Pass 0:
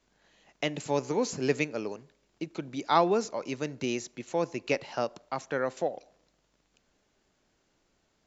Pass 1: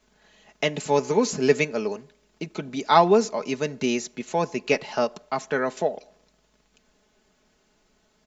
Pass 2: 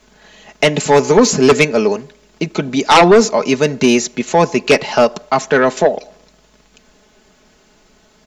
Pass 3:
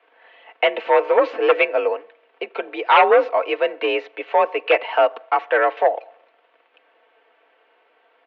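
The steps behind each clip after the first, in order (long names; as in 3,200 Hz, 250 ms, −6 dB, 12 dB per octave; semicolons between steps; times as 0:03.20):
comb filter 4.7 ms, depth 57%; level +5.5 dB
sine wavefolder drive 10 dB, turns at −3 dBFS
single-sideband voice off tune +57 Hz 380–2,900 Hz; level −4 dB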